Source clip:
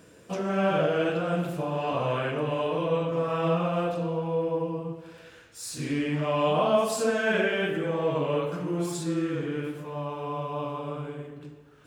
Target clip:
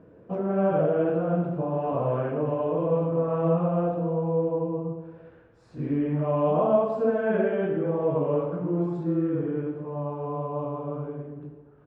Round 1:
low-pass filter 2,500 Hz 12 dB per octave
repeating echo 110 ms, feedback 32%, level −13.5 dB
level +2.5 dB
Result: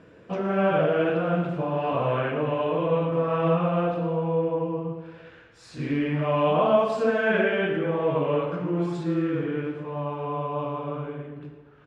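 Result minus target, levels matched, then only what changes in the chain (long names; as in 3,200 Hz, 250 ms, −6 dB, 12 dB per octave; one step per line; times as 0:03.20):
2,000 Hz band +10.0 dB
change: low-pass filter 850 Hz 12 dB per octave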